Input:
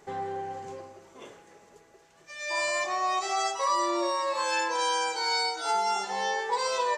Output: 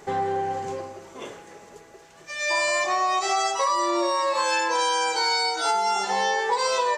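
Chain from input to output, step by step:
downward compressor, threshold −29 dBFS, peak gain reduction 7 dB
level +9 dB

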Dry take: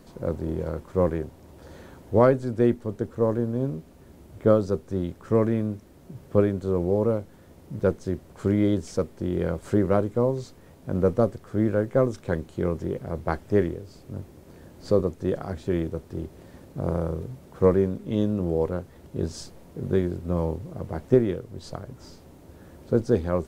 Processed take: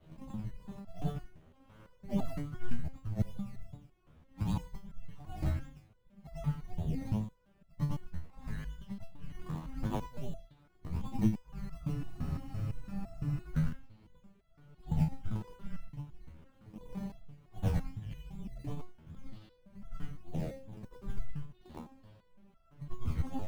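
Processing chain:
every overlapping window played backwards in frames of 234 ms
single-sideband voice off tune −360 Hz 200–3,600 Hz
in parallel at −6 dB: sample-and-hold swept by an LFO 17×, swing 60% 2.6 Hz
on the sum: frozen spectrum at 0:11.93, 1.48 s
step-sequenced resonator 5.9 Hz 79–670 Hz
level +3 dB

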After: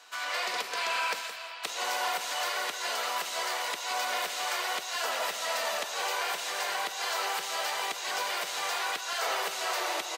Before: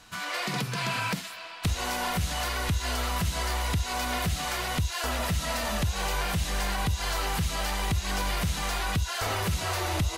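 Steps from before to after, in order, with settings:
high-pass filter 440 Hz 24 dB per octave
parametric band 11,000 Hz −9 dB 0.32 octaves
on a send: single-tap delay 168 ms −10 dB

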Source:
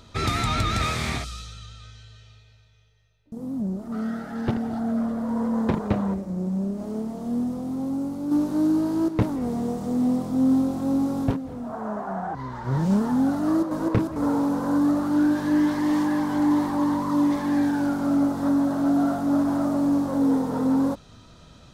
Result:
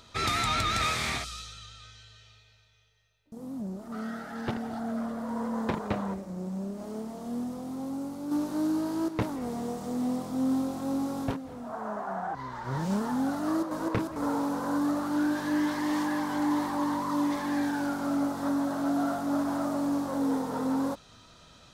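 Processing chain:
low-shelf EQ 480 Hz −10 dB

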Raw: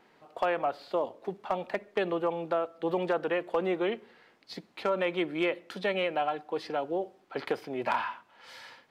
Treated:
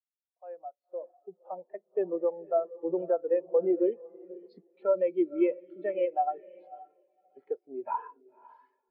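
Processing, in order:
fade in at the beginning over 1.62 s
camcorder AGC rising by 7.8 dB per second
0:06.46–0:07.37: resonant band-pass 3,500 Hz, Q 1.9
on a send: feedback delay with all-pass diffusion 526 ms, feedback 44%, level −7 dB
on the sum: every bin expanded away from the loudest bin 2.5 to 1

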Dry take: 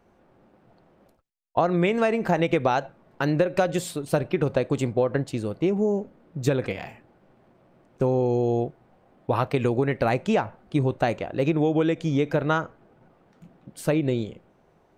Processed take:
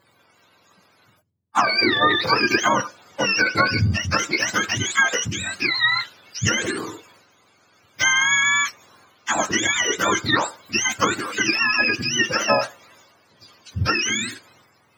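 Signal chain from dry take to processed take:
frequency axis turned over on the octave scale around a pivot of 900 Hz
transient designer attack +3 dB, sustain +7 dB
level +5.5 dB

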